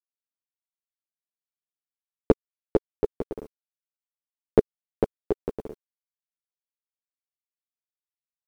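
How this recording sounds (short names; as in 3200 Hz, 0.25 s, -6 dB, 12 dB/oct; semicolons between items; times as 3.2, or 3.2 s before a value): a quantiser's noise floor 10-bit, dither none; a shimmering, thickened sound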